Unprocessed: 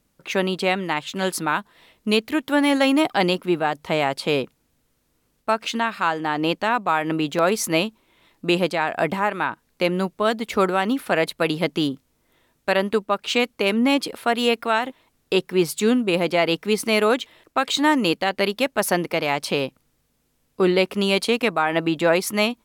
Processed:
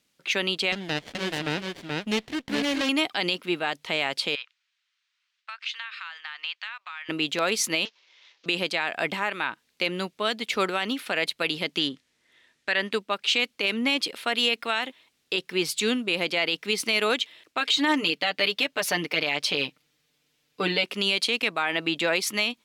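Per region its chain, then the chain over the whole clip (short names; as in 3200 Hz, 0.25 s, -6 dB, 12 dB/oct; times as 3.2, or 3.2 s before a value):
0.72–2.89 echo 0.429 s -4 dB + running maximum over 33 samples
4.35–7.09 HPF 1200 Hz 24 dB/oct + air absorption 140 m + compressor, threshold -31 dBFS
7.85–8.46 CVSD 32 kbps + HPF 470 Hz 24 dB/oct + notch 670 Hz
11.79–12.92 LPF 9700 Hz + bell 1800 Hz +8 dB 0.36 oct
17.6–20.84 bell 9400 Hz -4.5 dB 1.2 oct + comb 6.7 ms, depth 81%
whole clip: weighting filter D; limiter -6 dBFS; gain -6.5 dB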